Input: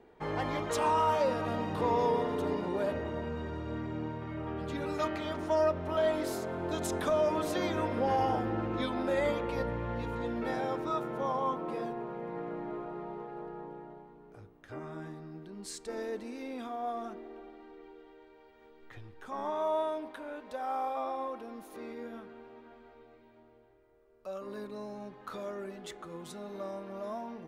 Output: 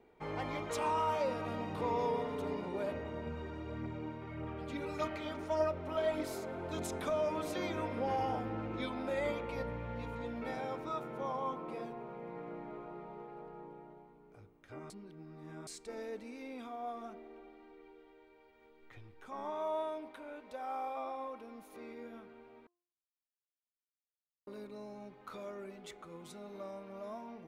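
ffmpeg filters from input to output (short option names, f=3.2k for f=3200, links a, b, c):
-filter_complex "[0:a]asettb=1/sr,asplit=3[a][b][c];[a]atrim=end=3.264[d];[b]atrim=start=3.26:end=6.83,asetpts=PTS-STARTPTS,afade=t=in:d=0.004:c=qsin,afade=t=out:st=3.566:d=0.004:c=qsin,aphaser=in_gain=1:out_gain=1:delay=4:decay=0.34:speed=1.7:type=triangular[e];[c]atrim=start=6.826[f];[d][e]acrossfade=d=0.004:c1=hsin:c2=qsin[g];[g][f]acrossfade=d=0.004:c1=qsin:c2=hsin,asplit=5[h][i][j][k][l];[h]atrim=end=14.902[m];[i]atrim=start=14.898:end=15.672,asetpts=PTS-STARTPTS,areverse[n];[j]atrim=start=15.668:end=22.67,asetpts=PTS-STARTPTS,afade=t=out:st=6.998:d=0.004:c=hsin[o];[k]atrim=start=22.67:end=24.47,asetpts=PTS-STARTPTS,volume=0[p];[l]atrim=start=24.47,asetpts=PTS-STARTPTS,afade=t=in:d=0.004:c=hsin[q];[m][n]acrossfade=d=0.004:c1=hsin:c2=hsin[r];[o][p][q]concat=n=3:v=0:a=1[s];[r][s]acrossfade=d=0.004:c1=hsin:c2=hsin,equalizer=f=2.3k:t=o:w=0.2:g=6.5,bandreject=f=1.7k:w=14,bandreject=f=349.3:t=h:w=4,bandreject=f=698.6:t=h:w=4,bandreject=f=1.0479k:t=h:w=4,volume=-5.5dB"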